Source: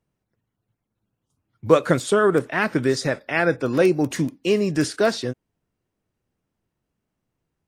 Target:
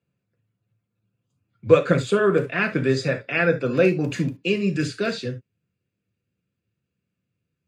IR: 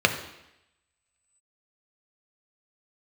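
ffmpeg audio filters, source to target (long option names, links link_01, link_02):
-filter_complex "[0:a]asetnsamples=nb_out_samples=441:pad=0,asendcmd='4.48 equalizer g -11',equalizer=frequency=790:width_type=o:width=1.3:gain=-3.5[link_01];[1:a]atrim=start_sample=2205,atrim=end_sample=3528[link_02];[link_01][link_02]afir=irnorm=-1:irlink=0,volume=-15.5dB"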